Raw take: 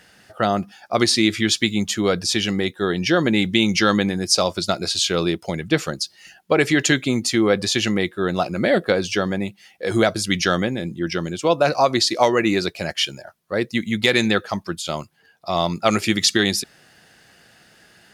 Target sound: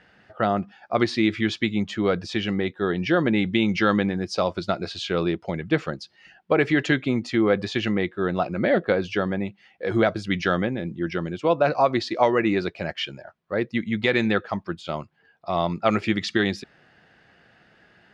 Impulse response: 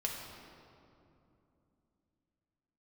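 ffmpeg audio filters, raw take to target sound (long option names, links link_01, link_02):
-af "lowpass=2500,volume=-2.5dB"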